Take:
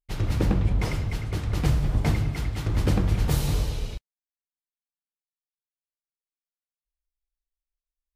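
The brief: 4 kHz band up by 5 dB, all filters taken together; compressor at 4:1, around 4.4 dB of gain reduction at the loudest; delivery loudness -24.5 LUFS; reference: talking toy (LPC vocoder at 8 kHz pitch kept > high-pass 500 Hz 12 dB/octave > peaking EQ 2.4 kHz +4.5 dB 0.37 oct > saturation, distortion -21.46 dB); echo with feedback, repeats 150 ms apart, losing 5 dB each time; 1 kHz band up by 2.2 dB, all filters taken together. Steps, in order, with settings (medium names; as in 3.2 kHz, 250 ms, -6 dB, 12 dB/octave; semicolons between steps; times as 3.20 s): peaking EQ 1 kHz +3 dB; peaking EQ 4 kHz +5.5 dB; compression 4:1, threshold -22 dBFS; feedback delay 150 ms, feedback 56%, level -5 dB; LPC vocoder at 8 kHz pitch kept; high-pass 500 Hz 12 dB/octave; peaking EQ 2.4 kHz +4.5 dB 0.37 oct; saturation -23.5 dBFS; trim +12 dB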